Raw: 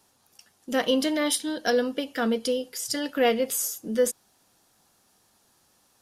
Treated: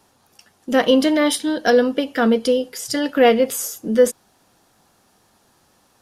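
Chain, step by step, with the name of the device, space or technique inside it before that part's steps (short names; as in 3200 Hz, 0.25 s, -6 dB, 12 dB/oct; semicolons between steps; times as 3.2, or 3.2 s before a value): behind a face mask (high shelf 3300 Hz -8 dB); gain +9 dB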